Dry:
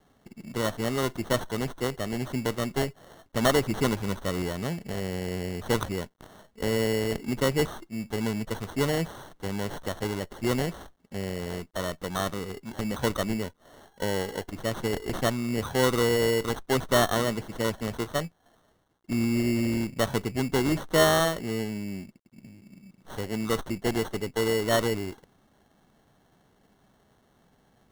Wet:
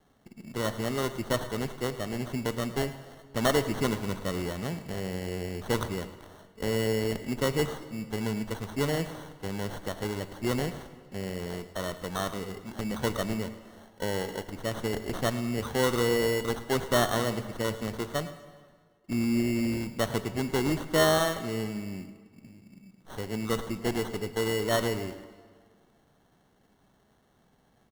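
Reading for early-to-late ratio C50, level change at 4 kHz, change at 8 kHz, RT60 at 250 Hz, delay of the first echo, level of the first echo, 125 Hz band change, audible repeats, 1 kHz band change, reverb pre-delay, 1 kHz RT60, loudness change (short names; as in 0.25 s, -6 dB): 11.5 dB, -2.0 dB, -2.0 dB, 1.7 s, 0.108 s, -16.5 dB, -2.0 dB, 1, -2.0 dB, 18 ms, 1.8 s, -2.0 dB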